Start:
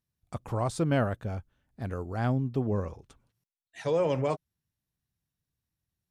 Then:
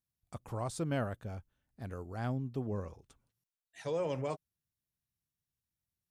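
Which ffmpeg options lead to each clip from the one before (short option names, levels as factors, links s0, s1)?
-af "highshelf=f=5800:g=7,volume=0.398"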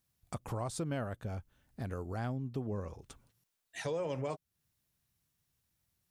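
-af "acompressor=threshold=0.00316:ratio=2.5,volume=3.35"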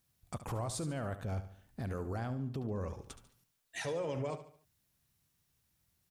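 -af "alimiter=level_in=2.82:limit=0.0631:level=0:latency=1:release=19,volume=0.355,aecho=1:1:72|144|216|288:0.251|0.108|0.0464|0.02,volume=1.41"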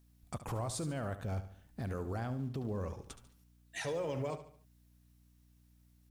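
-filter_complex "[0:a]aeval=exprs='val(0)+0.000631*(sin(2*PI*60*n/s)+sin(2*PI*2*60*n/s)/2+sin(2*PI*3*60*n/s)/3+sin(2*PI*4*60*n/s)/4+sin(2*PI*5*60*n/s)/5)':c=same,asplit=2[s0][s1];[s1]acrusher=bits=5:mode=log:mix=0:aa=0.000001,volume=0.251[s2];[s0][s2]amix=inputs=2:normalize=0,volume=0.794"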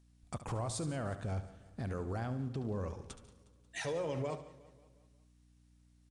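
-af "aecho=1:1:180|360|540|720|900:0.119|0.0642|0.0347|0.0187|0.0101,aresample=22050,aresample=44100"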